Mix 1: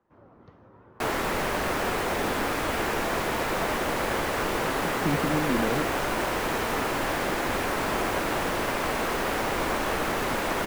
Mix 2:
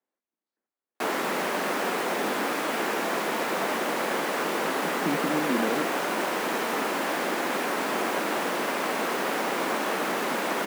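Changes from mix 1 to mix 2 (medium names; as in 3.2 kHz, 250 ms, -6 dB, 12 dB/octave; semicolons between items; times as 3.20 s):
first sound: muted; master: add steep high-pass 180 Hz 36 dB/octave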